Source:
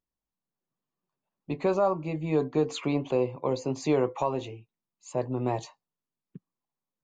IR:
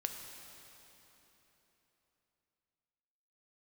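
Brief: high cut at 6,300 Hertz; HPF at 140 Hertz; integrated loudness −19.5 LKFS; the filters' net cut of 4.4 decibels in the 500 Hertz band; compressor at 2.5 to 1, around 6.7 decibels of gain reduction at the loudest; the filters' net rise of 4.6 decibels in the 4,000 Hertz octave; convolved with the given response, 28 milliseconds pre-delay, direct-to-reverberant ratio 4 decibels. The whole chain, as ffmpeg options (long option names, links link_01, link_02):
-filter_complex "[0:a]highpass=140,lowpass=6300,equalizer=frequency=500:width_type=o:gain=-5.5,equalizer=frequency=4000:width_type=o:gain=6,acompressor=threshold=-33dB:ratio=2.5,asplit=2[link_01][link_02];[1:a]atrim=start_sample=2205,adelay=28[link_03];[link_02][link_03]afir=irnorm=-1:irlink=0,volume=-4.5dB[link_04];[link_01][link_04]amix=inputs=2:normalize=0,volume=16dB"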